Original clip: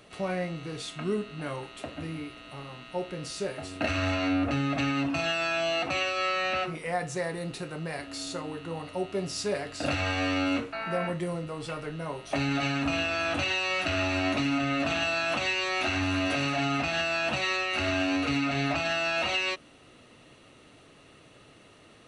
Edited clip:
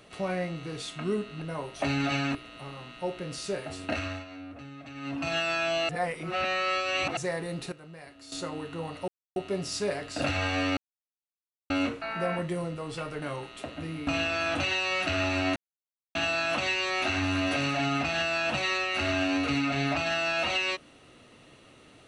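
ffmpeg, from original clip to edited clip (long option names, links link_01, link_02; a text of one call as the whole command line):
ffmpeg -i in.wav -filter_complex "[0:a]asplit=15[link_01][link_02][link_03][link_04][link_05][link_06][link_07][link_08][link_09][link_10][link_11][link_12][link_13][link_14][link_15];[link_01]atrim=end=1.422[link_16];[link_02]atrim=start=11.928:end=12.862[link_17];[link_03]atrim=start=2.268:end=4.17,asetpts=PTS-STARTPTS,afade=type=out:start_time=1.472:duration=0.43:silence=0.149624[link_18];[link_04]atrim=start=4.17:end=4.86,asetpts=PTS-STARTPTS,volume=-16.5dB[link_19];[link_05]atrim=start=4.86:end=5.812,asetpts=PTS-STARTPTS,afade=type=in:duration=0.43:silence=0.149624[link_20];[link_06]atrim=start=5.808:end=7.092,asetpts=PTS-STARTPTS,areverse[link_21];[link_07]atrim=start=7.088:end=7.642[link_22];[link_08]atrim=start=7.638:end=8.242,asetpts=PTS-STARTPTS,volume=-11.5dB[link_23];[link_09]atrim=start=8.238:end=9,asetpts=PTS-STARTPTS,afade=type=out:start_time=0.758:duration=0.004:curve=hsin,apad=pad_dur=0.28[link_24];[link_10]atrim=start=9:end=10.41,asetpts=PTS-STARTPTS,afade=type=in:duration=0.004:curve=hsin,afade=type=out:start_time=1.406:duration=0.004:curve=hsin,apad=pad_dur=0.93[link_25];[link_11]atrim=start=10.41:end=11.932,asetpts=PTS-STARTPTS,afade=type=in:duration=0.004:curve=hsin[link_26];[link_12]atrim=start=1.418:end=2.272[link_27];[link_13]atrim=start=12.858:end=14.35,asetpts=PTS-STARTPTS,afade=type=out:start_time=1.488:duration=0.004:curve=hsin[link_28];[link_14]atrim=start=14.35:end=14.94,asetpts=PTS-STARTPTS,volume=0[link_29];[link_15]atrim=start=14.94,asetpts=PTS-STARTPTS,afade=type=in:duration=0.004:curve=hsin[link_30];[link_16][link_17]acrossfade=duration=0.004:curve1=hsin:curve2=hsin[link_31];[link_18][link_19][link_20]concat=n=3:v=0:a=1[link_32];[link_31][link_32]acrossfade=duration=0.004:curve1=hsin:curve2=hsin[link_33];[link_33][link_21]acrossfade=duration=0.004:curve1=hsin:curve2=hsin[link_34];[link_34][link_22]acrossfade=duration=0.004:curve1=hsin:curve2=hsin[link_35];[link_35][link_23]acrossfade=duration=0.004:curve1=hsin:curve2=hsin[link_36];[link_24][link_25][link_26]concat=n=3:v=0:a=1[link_37];[link_36][link_37]acrossfade=duration=0.004:curve1=hsin:curve2=hsin[link_38];[link_38][link_27]acrossfade=duration=0.004:curve1=hsin:curve2=hsin[link_39];[link_28][link_29][link_30]concat=n=3:v=0:a=1[link_40];[link_39][link_40]acrossfade=duration=0.004:curve1=hsin:curve2=hsin" out.wav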